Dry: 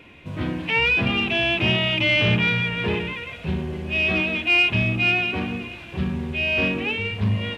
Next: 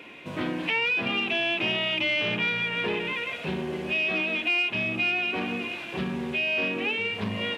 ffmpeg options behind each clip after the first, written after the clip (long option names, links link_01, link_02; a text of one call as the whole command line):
ffmpeg -i in.wav -af "highpass=260,acompressor=threshold=-30dB:ratio=3,volume=3.5dB" out.wav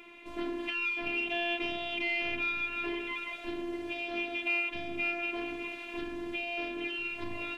ffmpeg -i in.wav -af "equalizer=frequency=130:width=2:gain=14.5,afftfilt=real='hypot(re,im)*cos(PI*b)':imag='0':win_size=512:overlap=0.75,volume=-4dB" out.wav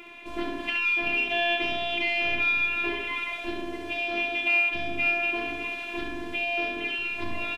ffmpeg -i in.wav -af "aecho=1:1:25|68:0.211|0.473,volume=6dB" out.wav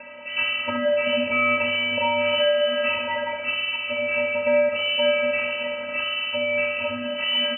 ffmpeg -i in.wav -af "acrusher=samples=5:mix=1:aa=0.000001,lowpass=frequency=2600:width_type=q:width=0.5098,lowpass=frequency=2600:width_type=q:width=0.6013,lowpass=frequency=2600:width_type=q:width=0.9,lowpass=frequency=2600:width_type=q:width=2.563,afreqshift=-3000,volume=6.5dB" out.wav